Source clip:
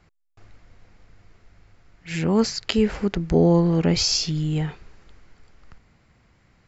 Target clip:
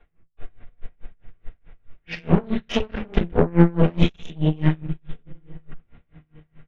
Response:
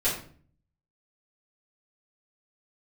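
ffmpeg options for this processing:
-filter_complex "[0:a]aresample=8000,aresample=44100,acrossover=split=180[a][b];[b]acompressor=threshold=-22dB:ratio=6[c];[a][c]amix=inputs=2:normalize=0,asplit=2[d][e];[e]adelay=898,lowpass=f=2k:p=1,volume=-23dB,asplit=2[f][g];[g]adelay=898,lowpass=f=2k:p=1,volume=0.37[h];[d][f][h]amix=inputs=3:normalize=0[i];[1:a]atrim=start_sample=2205[j];[i][j]afir=irnorm=-1:irlink=0,aeval=exprs='1.26*(cos(1*acos(clip(val(0)/1.26,-1,1)))-cos(1*PI/2))+0.141*(cos(4*acos(clip(val(0)/1.26,-1,1)))-cos(4*PI/2))+0.126*(cos(8*acos(clip(val(0)/1.26,-1,1)))-cos(8*PI/2))':c=same,aeval=exprs='val(0)*pow(10,-28*(0.5-0.5*cos(2*PI*4.7*n/s))/20)':c=same,volume=-4dB"

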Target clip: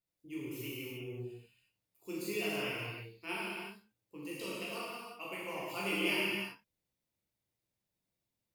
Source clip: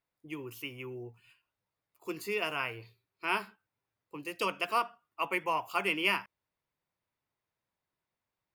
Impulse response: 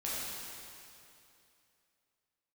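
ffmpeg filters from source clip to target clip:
-filter_complex "[0:a]equalizer=f=1.2k:w=0.7:g=-13.5,asettb=1/sr,asplit=3[a][b][c];[a]atrim=end=3.324[d];[b]atrim=start=3.32:end=5.58,asetpts=PTS-STARTPTS,afade=t=in:d=0.004:c=qsin,afade=t=out:st=2.256:d=0.004:c=qsin,acompressor=threshold=-39dB:ratio=6[e];[c]atrim=start=5.576[f];[d][e]acrossfade=d=0.004:c1=hsin:c2=qsin[g];[g][f]acrossfade=d=0.004:c1=qsin:c2=hsin[h];[1:a]atrim=start_sample=2205,afade=t=out:st=0.43:d=0.01,atrim=end_sample=19404[i];[h][i]afir=irnorm=-1:irlink=0"

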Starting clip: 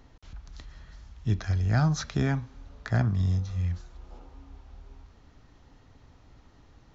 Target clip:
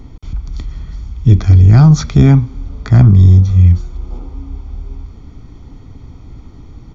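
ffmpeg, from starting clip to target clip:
-af "lowshelf=f=720:t=q:w=1.5:g=8,aecho=1:1:0.9:0.65,apsyclip=11dB,volume=-1.5dB"

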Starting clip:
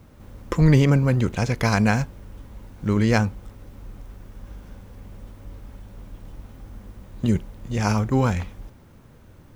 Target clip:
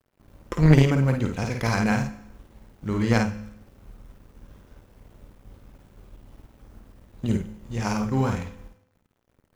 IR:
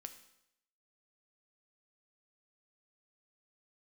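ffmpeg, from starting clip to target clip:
-filter_complex "[0:a]aeval=exprs='sgn(val(0))*max(abs(val(0))-0.00631,0)':c=same,asplit=2[a][b];[1:a]atrim=start_sample=2205,adelay=52[c];[b][c]afir=irnorm=-1:irlink=0,volume=2.5dB[d];[a][d]amix=inputs=2:normalize=0,aeval=exprs='0.794*(cos(1*acos(clip(val(0)/0.794,-1,1)))-cos(1*PI/2))+0.126*(cos(3*acos(clip(val(0)/0.794,-1,1)))-cos(3*PI/2))':c=same"

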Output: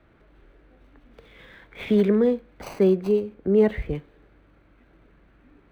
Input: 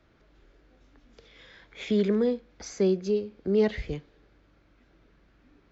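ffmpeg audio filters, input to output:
-filter_complex "[0:a]asettb=1/sr,asplit=3[a][b][c];[a]atrim=end=3.344[d];[b]atrim=start=3.34:end=3.95,asetpts=PTS-STARTPTS,afade=t=in:d=0.004:c=qsin,afade=t=out:st=0.606:d=0.004:c=qsin,highshelf=f=2.7k:g=-7.5[e];[c]atrim=start=3.946[f];[d][e]acrossfade=d=0.004:c1=hsin:c2=qsin[g];[g][f]acrossfade=d=0.004:c1=qsin:c2=hsin,acrossover=split=3500[h][i];[i]acrusher=samples=25:mix=1:aa=0.000001[j];[h][j]amix=inputs=2:normalize=0,volume=5dB"

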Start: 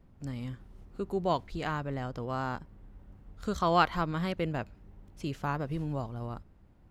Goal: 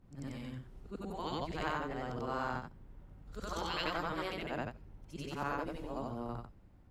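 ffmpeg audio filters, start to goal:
-af "afftfilt=real='re':imag='-im':win_size=8192:overlap=0.75,afftfilt=real='re*lt(hypot(re,im),0.0794)':imag='im*lt(hypot(re,im),0.0794)':win_size=1024:overlap=0.75,volume=3dB"

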